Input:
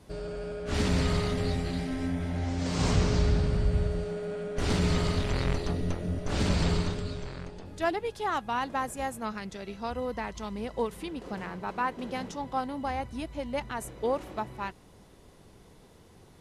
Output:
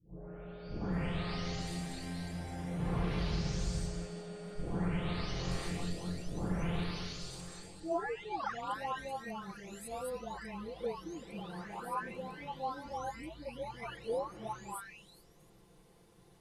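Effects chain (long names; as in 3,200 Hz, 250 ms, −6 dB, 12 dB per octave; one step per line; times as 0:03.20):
every frequency bin delayed by itself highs late, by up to 931 ms
echo ahead of the sound 33 ms −14 dB
level −5 dB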